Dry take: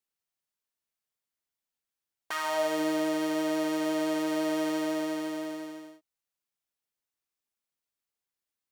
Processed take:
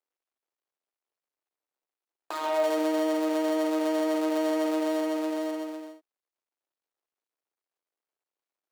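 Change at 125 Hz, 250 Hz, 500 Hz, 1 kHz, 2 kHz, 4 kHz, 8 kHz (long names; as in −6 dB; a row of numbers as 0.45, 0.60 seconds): below −15 dB, +2.0 dB, +4.0 dB, +2.0 dB, −2.5 dB, −1.5 dB, −2.0 dB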